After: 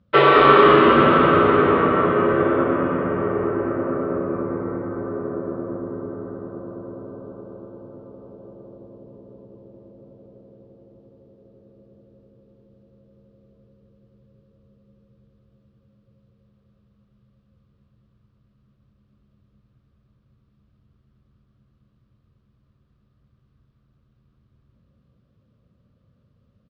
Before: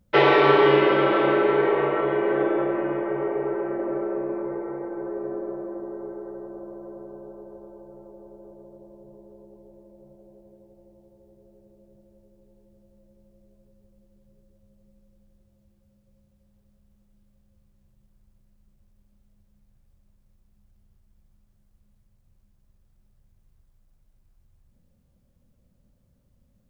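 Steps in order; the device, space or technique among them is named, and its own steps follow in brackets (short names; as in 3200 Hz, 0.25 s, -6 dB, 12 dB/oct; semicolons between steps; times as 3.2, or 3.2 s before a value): frequency-shifting delay pedal into a guitar cabinet (frequency-shifting echo 0.21 s, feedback 54%, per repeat -80 Hz, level -5 dB; speaker cabinet 81–4200 Hz, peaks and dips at 110 Hz +4 dB, 320 Hz -3 dB, 830 Hz -8 dB, 1200 Hz +9 dB, 2100 Hz -4 dB); gain +3 dB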